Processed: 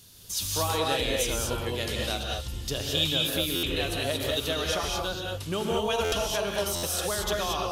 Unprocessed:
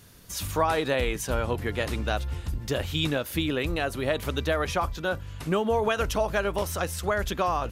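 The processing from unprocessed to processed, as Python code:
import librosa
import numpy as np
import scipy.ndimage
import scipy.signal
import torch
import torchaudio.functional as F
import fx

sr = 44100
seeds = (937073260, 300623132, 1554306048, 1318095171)

y = fx.high_shelf_res(x, sr, hz=2600.0, db=8.5, q=1.5)
y = fx.rev_gated(y, sr, seeds[0], gate_ms=250, shape='rising', drr_db=-1.5)
y = fx.buffer_glitch(y, sr, at_s=(3.55, 6.04, 6.75), block=512, repeats=6)
y = F.gain(torch.from_numpy(y), -6.0).numpy()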